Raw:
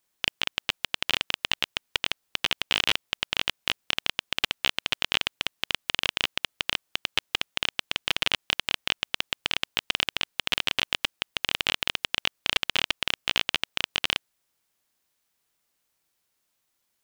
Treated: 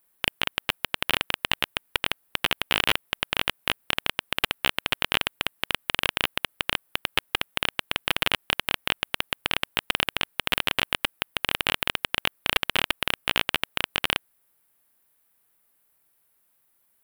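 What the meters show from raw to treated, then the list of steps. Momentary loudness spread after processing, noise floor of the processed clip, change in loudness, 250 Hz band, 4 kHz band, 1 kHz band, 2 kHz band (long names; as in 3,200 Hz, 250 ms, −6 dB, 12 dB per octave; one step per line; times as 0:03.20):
4 LU, −68 dBFS, +1.0 dB, +5.0 dB, −0.5 dB, +5.0 dB, +2.5 dB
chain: drawn EQ curve 1,600 Hz 0 dB, 6,400 Hz −11 dB, 11,000 Hz +6 dB
level +5 dB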